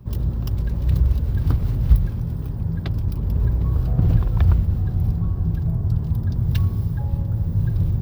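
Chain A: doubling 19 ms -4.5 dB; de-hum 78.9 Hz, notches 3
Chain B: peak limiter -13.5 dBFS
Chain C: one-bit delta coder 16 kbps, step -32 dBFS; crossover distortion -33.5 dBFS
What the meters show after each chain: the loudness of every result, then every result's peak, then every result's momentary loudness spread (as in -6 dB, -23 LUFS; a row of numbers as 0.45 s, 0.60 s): -20.5 LUFS, -23.5 LUFS, -23.5 LUFS; -2.0 dBFS, -13.5 dBFS, -4.5 dBFS; 6 LU, 3 LU, 7 LU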